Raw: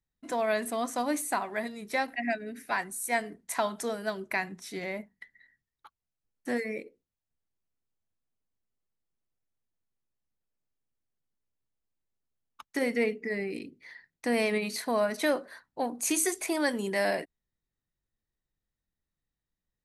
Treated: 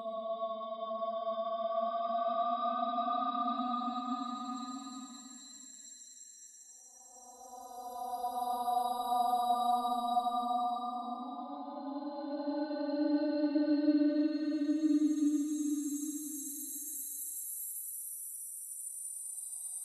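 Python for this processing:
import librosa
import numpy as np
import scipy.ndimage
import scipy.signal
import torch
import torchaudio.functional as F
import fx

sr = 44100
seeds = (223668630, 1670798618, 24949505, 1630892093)

y = fx.bin_expand(x, sr, power=3.0)
y = fx.echo_wet_highpass(y, sr, ms=309, feedback_pct=36, hz=4700.0, wet_db=-6.5)
y = fx.paulstretch(y, sr, seeds[0], factor=37.0, window_s=0.1, from_s=0.74)
y = y * librosa.db_to_amplitude(4.5)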